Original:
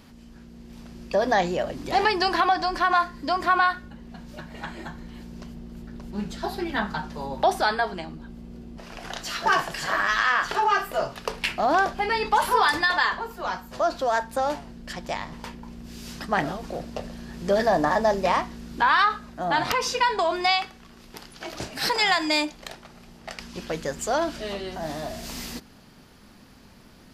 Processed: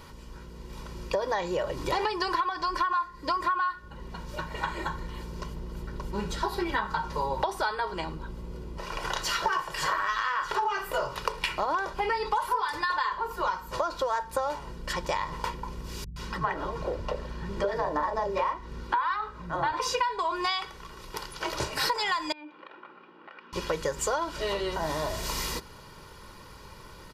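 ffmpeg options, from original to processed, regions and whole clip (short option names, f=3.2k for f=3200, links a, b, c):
-filter_complex "[0:a]asettb=1/sr,asplit=3[a][b][c];[a]atrim=end=16.044[d];[b]atrim=start=16.04:end=19.8,asetpts=PTS-STARTPTS,afade=t=in:d=0.004:c=qsin,afade=t=out:st=3.756:d=0.004:c=qsin,lowpass=f=2.2k:p=1,acrossover=split=200|640[e][f][g];[g]adelay=120[h];[f]adelay=150[i];[e][i][h]amix=inputs=3:normalize=0,atrim=end_sample=165816[j];[c]atrim=start=19.796[k];[d][j]acrossfade=d=0.004:c1=hsin:c2=qsin[l];[l][k]acrossfade=d=0.004:c1=qsin:c2=hsin,asettb=1/sr,asplit=3[m][n][o];[m]atrim=end=22.324[p];[n]atrim=start=22.32:end=23.53,asetpts=PTS-STARTPTS,afade=t=in:d=0.004:c=qsin,afade=t=out:st=1.206:d=0.004:c=qsin,acompressor=threshold=-41dB:ratio=4:attack=3.2:release=140:knee=1:detection=peak,highpass=f=260:w=0.5412,highpass=f=260:w=1.3066,equalizer=f=290:t=q:w=4:g=5,equalizer=f=430:t=q:w=4:g=-8,equalizer=f=630:t=q:w=4:g=-9,equalizer=f=930:t=q:w=4:g=-7,equalizer=f=2k:t=q:w=4:g=-9,lowpass=f=2.4k:w=0.5412,lowpass=f=2.4k:w=1.3066[q];[o]atrim=start=23.526[r];[p][q]acrossfade=d=0.004:c1=hsin:c2=qsin[s];[s][r]acrossfade=d=0.004:c1=qsin:c2=hsin,equalizer=f=1.1k:t=o:w=0.38:g=10,aecho=1:1:2.1:0.71,acompressor=threshold=-27dB:ratio=10,volume=2dB"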